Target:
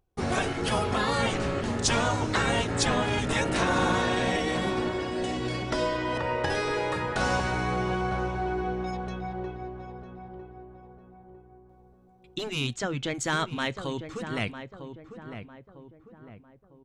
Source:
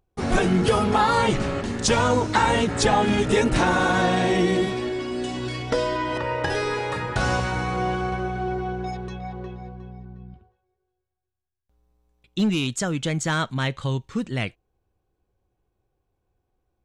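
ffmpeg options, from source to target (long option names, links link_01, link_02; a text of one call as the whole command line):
ffmpeg -i in.wav -filter_complex "[0:a]asplit=3[link_01][link_02][link_03];[link_01]afade=type=out:start_time=12.73:duration=0.02[link_04];[link_02]lowpass=4900,afade=type=in:start_time=12.73:duration=0.02,afade=type=out:start_time=13.13:duration=0.02[link_05];[link_03]afade=type=in:start_time=13.13:duration=0.02[link_06];[link_04][link_05][link_06]amix=inputs=3:normalize=0,afftfilt=real='re*lt(hypot(re,im),0.501)':imag='im*lt(hypot(re,im),0.501)':win_size=1024:overlap=0.75,asplit=2[link_07][link_08];[link_08]adelay=952,lowpass=frequency=1300:poles=1,volume=-8.5dB,asplit=2[link_09][link_10];[link_10]adelay=952,lowpass=frequency=1300:poles=1,volume=0.45,asplit=2[link_11][link_12];[link_12]adelay=952,lowpass=frequency=1300:poles=1,volume=0.45,asplit=2[link_13][link_14];[link_14]adelay=952,lowpass=frequency=1300:poles=1,volume=0.45,asplit=2[link_15][link_16];[link_16]adelay=952,lowpass=frequency=1300:poles=1,volume=0.45[link_17];[link_07][link_09][link_11][link_13][link_15][link_17]amix=inputs=6:normalize=0,volume=-2.5dB" out.wav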